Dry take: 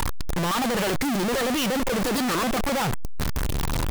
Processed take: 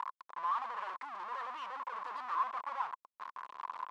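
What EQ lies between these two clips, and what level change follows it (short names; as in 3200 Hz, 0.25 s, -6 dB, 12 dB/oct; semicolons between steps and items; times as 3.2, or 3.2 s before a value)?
ladder band-pass 1100 Hz, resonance 80%; -4.5 dB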